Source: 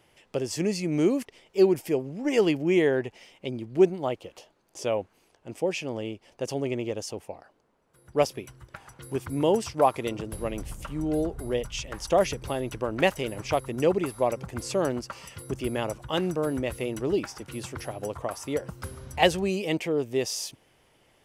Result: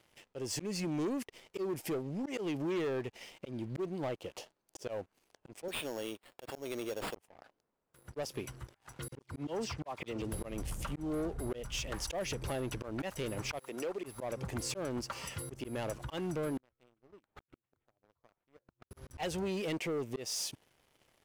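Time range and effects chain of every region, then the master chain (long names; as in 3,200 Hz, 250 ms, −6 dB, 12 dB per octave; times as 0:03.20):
0:05.68–0:07.15: high-pass filter 580 Hz 6 dB per octave + sample-rate reduction 6,100 Hz
0:09.08–0:10.22: low-pass filter 6,000 Hz + volume swells 253 ms + all-pass dispersion lows, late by 42 ms, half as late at 2,600 Hz
0:13.59–0:14.04: high-pass filter 390 Hz + downward compressor 1.5 to 1, threshold −45 dBFS
0:16.57–0:18.91: gate with flip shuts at −29 dBFS, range −32 dB + linearly interpolated sample-rate reduction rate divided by 8×
whole clip: volume swells 253 ms; downward compressor 2 to 1, threshold −36 dBFS; leveller curve on the samples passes 3; level −9 dB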